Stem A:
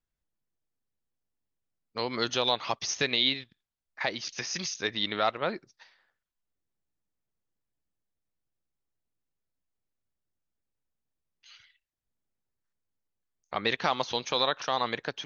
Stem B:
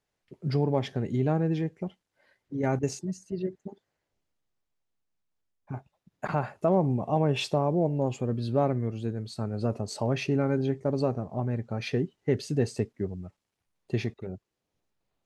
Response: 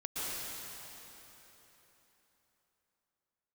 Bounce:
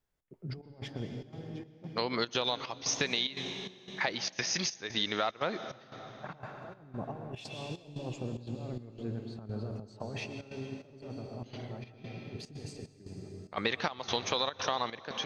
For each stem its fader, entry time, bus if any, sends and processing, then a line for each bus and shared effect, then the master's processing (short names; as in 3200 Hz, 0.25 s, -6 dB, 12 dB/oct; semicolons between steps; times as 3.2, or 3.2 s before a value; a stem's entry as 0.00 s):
+2.0 dB, 0.00 s, send -18 dB, dry
-11.0 dB, 0.00 s, send -6.5 dB, low-pass opened by the level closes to 1700 Hz, open at -21.5 dBFS; negative-ratio compressor -29 dBFS, ratio -0.5; auto duck -11 dB, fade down 1.05 s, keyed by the first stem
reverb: on, RT60 3.8 s, pre-delay 0.108 s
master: step gate "xx.xxx..xx" 147 bpm -12 dB; compressor 6:1, threshold -27 dBFS, peak gain reduction 9.5 dB